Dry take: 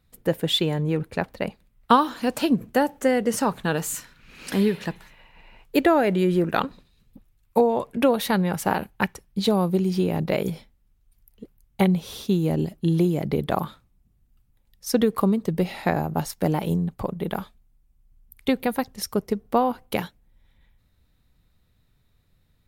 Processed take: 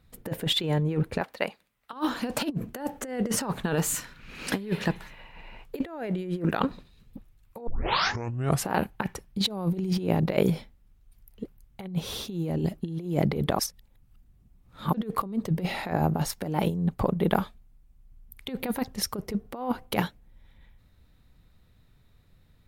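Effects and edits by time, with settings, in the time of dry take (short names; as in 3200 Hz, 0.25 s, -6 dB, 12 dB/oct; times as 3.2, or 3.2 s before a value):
1.21–1.93 HPF 960 Hz 6 dB/oct
7.67 tape start 1.02 s
13.59–14.94 reverse
whole clip: high shelf 4200 Hz -5 dB; negative-ratio compressor -26 dBFS, ratio -0.5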